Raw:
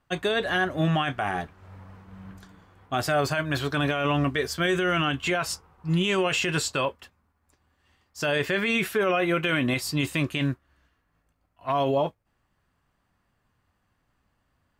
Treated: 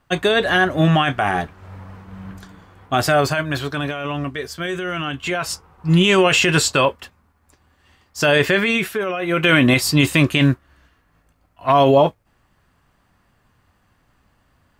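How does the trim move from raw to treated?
3.09 s +8.5 dB
4.03 s -1 dB
4.98 s -1 dB
5.98 s +10 dB
8.47 s +10 dB
9.18 s -1.5 dB
9.48 s +11 dB

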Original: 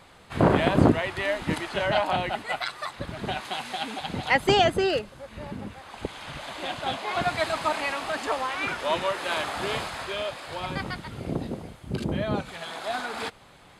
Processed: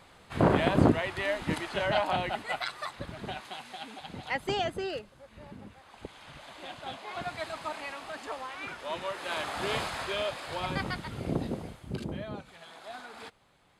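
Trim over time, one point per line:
2.84 s -3.5 dB
3.65 s -10.5 dB
8.85 s -10.5 dB
9.83 s -1 dB
11.69 s -1 dB
12.37 s -13 dB

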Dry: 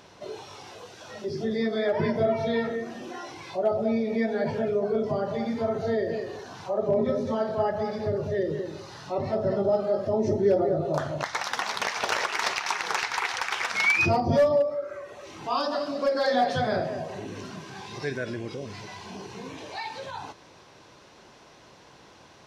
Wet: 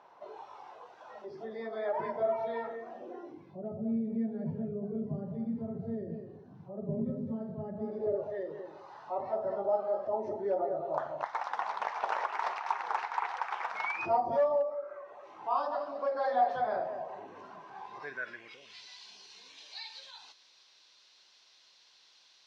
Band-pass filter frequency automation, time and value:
band-pass filter, Q 2.3
2.84 s 900 Hz
3.58 s 170 Hz
7.66 s 170 Hz
8.34 s 870 Hz
17.92 s 870 Hz
18.86 s 4.2 kHz

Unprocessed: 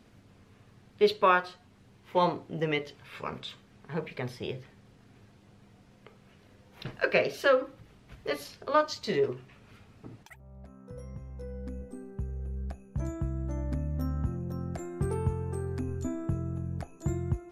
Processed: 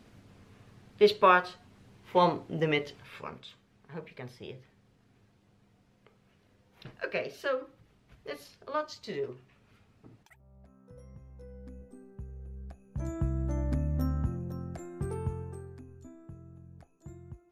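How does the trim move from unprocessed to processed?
2.97 s +1.5 dB
3.41 s -8 dB
12.76 s -8 dB
13.22 s +2 dB
14.03 s +2 dB
14.74 s -4.5 dB
15.39 s -4.5 dB
15.87 s -16.5 dB

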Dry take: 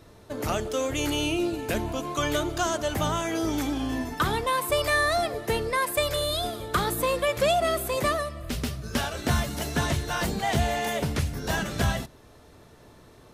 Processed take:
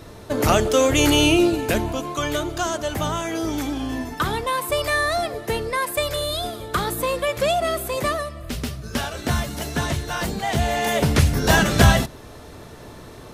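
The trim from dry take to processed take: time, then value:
1.34 s +10.5 dB
2.19 s +2 dB
10.52 s +2 dB
11.29 s +11.5 dB

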